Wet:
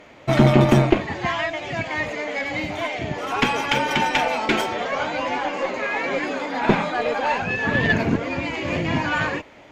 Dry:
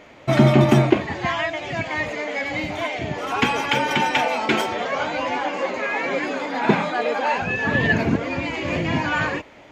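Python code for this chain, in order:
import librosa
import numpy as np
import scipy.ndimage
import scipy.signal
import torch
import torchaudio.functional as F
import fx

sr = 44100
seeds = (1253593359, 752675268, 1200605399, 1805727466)

y = fx.tube_stage(x, sr, drive_db=6.0, bias=0.65)
y = y * 10.0 ** (3.0 / 20.0)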